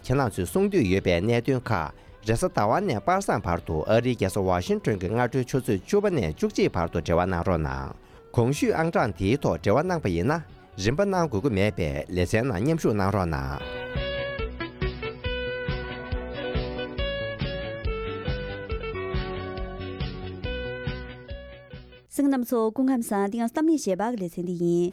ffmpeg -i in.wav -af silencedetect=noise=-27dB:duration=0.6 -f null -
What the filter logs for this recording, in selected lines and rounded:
silence_start: 21.35
silence_end: 22.16 | silence_duration: 0.81